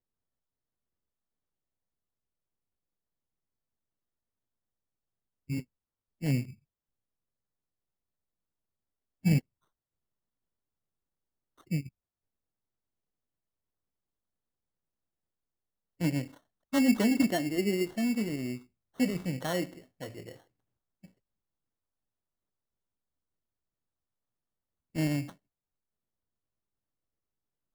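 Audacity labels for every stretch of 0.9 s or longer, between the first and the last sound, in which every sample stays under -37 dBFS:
6.500000	9.250000	silence
9.390000	11.710000	silence
11.870000	16.010000	silence
20.310000	24.960000	silence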